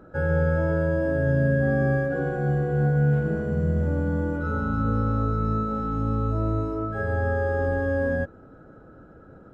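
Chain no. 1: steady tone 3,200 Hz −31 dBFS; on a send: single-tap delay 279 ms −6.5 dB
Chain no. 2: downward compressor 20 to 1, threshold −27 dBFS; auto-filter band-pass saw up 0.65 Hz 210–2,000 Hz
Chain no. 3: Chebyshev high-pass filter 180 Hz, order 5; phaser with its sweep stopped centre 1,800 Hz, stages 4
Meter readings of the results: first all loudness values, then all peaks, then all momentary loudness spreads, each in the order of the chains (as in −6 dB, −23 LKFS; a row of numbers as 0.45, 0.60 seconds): −23.5, −40.5, −31.5 LKFS; −10.5, −25.5, −18.5 dBFS; 6, 9, 4 LU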